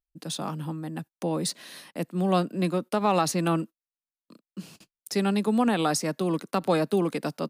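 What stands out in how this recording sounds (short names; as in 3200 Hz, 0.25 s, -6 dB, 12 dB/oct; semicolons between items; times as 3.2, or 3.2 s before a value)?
noise floor -96 dBFS; spectral tilt -5.0 dB/oct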